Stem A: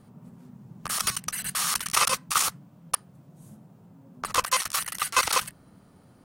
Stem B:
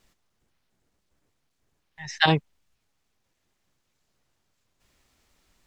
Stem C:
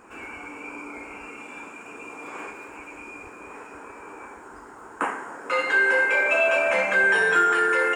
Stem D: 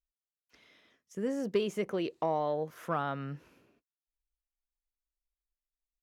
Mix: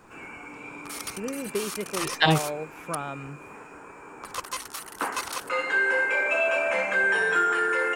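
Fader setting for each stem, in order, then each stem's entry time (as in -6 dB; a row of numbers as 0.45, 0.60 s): -9.5, -0.5, -3.5, -0.5 dB; 0.00, 0.00, 0.00, 0.00 s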